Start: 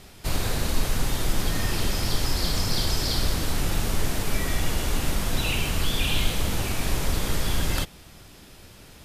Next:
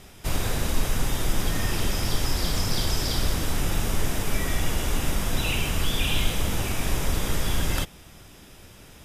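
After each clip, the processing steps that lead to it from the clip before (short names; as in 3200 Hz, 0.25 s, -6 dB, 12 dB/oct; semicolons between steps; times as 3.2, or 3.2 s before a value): notch 4300 Hz, Q 7.1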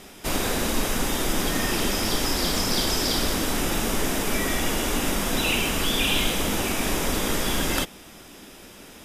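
resonant low shelf 170 Hz -9 dB, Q 1.5; gain +4.5 dB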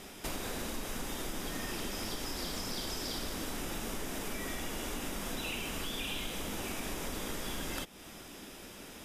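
compressor 4:1, threshold -33 dBFS, peak gain reduction 12.5 dB; gain -3.5 dB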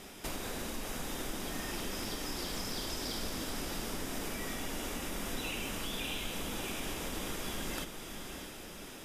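diffused feedback echo 0.638 s, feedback 44%, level -7 dB; gain -1 dB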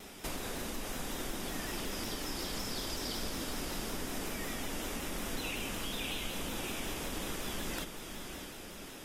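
shaped vibrato saw down 5.4 Hz, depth 100 cents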